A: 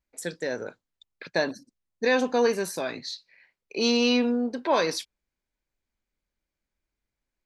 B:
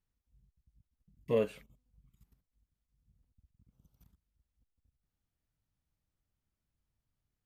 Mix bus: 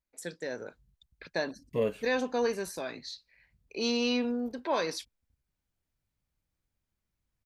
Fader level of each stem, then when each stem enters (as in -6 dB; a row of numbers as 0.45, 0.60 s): -6.5, +0.5 dB; 0.00, 0.45 s